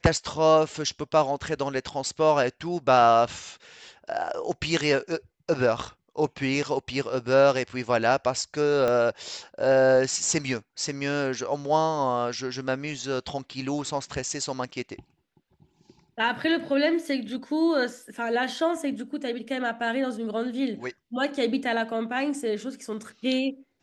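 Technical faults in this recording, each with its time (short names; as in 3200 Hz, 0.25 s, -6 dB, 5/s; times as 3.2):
8.88 pop -14 dBFS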